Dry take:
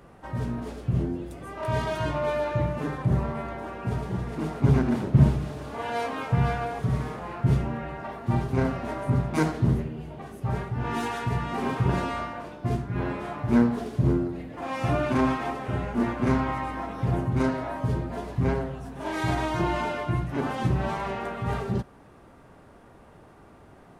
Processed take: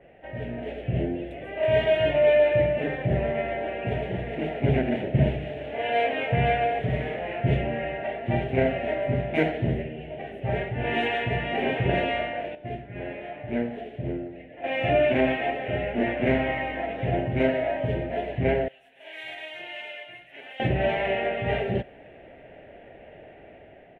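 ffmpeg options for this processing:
ffmpeg -i in.wav -filter_complex "[0:a]asettb=1/sr,asplit=3[link_01][link_02][link_03];[link_01]atrim=end=18.684[link_04];[link_02]atrim=start=18.68:end=20.6,asetpts=PTS-STARTPTS,afade=type=in:duration=0.004:curve=qsin,afade=type=out:start_time=1.916:duration=0.004:curve=qsin,aderivative[link_05];[link_03]atrim=start=20.596[link_06];[link_04][link_05]acrossfade=duration=0.004:curve1=hsin:curve2=qsin[link_07];[link_07][link_06]acrossfade=duration=0.004:curve1=qsin:curve2=hsin,asplit=3[link_08][link_09][link_10];[link_08]atrim=end=12.552[link_11];[link_09]atrim=start=12.548:end=14.642,asetpts=PTS-STARTPTS,volume=-9dB[link_12];[link_10]atrim=start=14.638[link_13];[link_11][link_12]acrossfade=duration=0.004:curve1=hsin:curve2=hsin[link_14];[link_14][link_13]acrossfade=duration=0.004:curve1=hsin:curve2=hsin,firequalizer=gain_entry='entry(200,0);entry(640,14);entry(1100,-15);entry(1800,12);entry(2900,12);entry(4800,-22)':delay=0.05:min_phase=1,dynaudnorm=framelen=140:gausssize=9:maxgain=6dB,adynamicequalizer=threshold=0.0141:dfrequency=3700:dqfactor=0.7:tfrequency=3700:tqfactor=0.7:attack=5:release=100:ratio=0.375:range=2.5:mode=boostabove:tftype=highshelf,volume=-7.5dB" out.wav

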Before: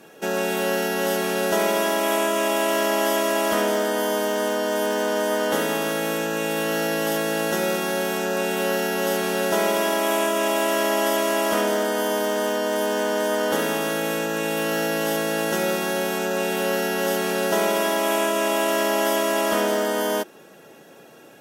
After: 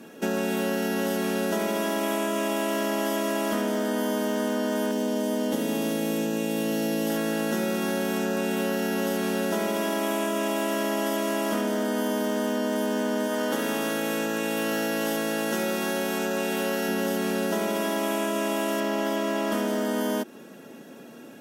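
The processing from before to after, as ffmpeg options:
ffmpeg -i in.wav -filter_complex "[0:a]asettb=1/sr,asplit=3[link_01][link_02][link_03];[link_01]atrim=end=4.914[link_04];[link_02]atrim=start=4.91:end=7.1,asetpts=PTS-STARTPTS,afade=type=in:duration=0.004:curve=qsin,afade=type=out:start_time=2.186:duration=0.004:curve=qsin,equalizer=frequency=1400:width=1.3:gain=-9.5[link_05];[link_03]atrim=start=7.096[link_06];[link_04][link_05]acrossfade=duration=0.004:curve1=hsin:curve2=qsin[link_07];[link_07][link_06]acrossfade=duration=0.004:curve1=qsin:curve2=hsin,asettb=1/sr,asplit=3[link_08][link_09][link_10];[link_08]atrim=end=13.274[link_11];[link_09]atrim=start=13.27:end=16.89,asetpts=PTS-STARTPTS,afade=type=in:duration=0.004:curve=qsin,afade=type=out:start_time=3.616:duration=0.004:curve=qsin,lowshelf=frequency=230:gain=-10[link_12];[link_10]atrim=start=16.886[link_13];[link_11][link_12]acrossfade=duration=0.004:curve1=hsin:curve2=qsin[link_14];[link_14][link_13]acrossfade=duration=0.004:curve1=qsin:curve2=hsin,asettb=1/sr,asplit=3[link_15][link_16][link_17];[link_15]atrim=end=18.804[link_18];[link_16]atrim=start=18.8:end=19.52,asetpts=PTS-STARTPTS,afade=type=in:duration=0.004:curve=qsin,afade=type=out:start_time=0.716:duration=0.004:curve=qsin,equalizer=frequency=11000:width_type=o:width=1.2:gain=-8.5[link_19];[link_17]atrim=start=19.516[link_20];[link_18][link_19]acrossfade=duration=0.004:curve1=hsin:curve2=qsin[link_21];[link_21][link_20]acrossfade=duration=0.004:curve1=qsin:curve2=hsin,equalizer=frequency=240:width_type=o:width=0.61:gain=13,bandreject=frequency=780:width=17,acompressor=threshold=-22dB:ratio=6,volume=-1dB" out.wav

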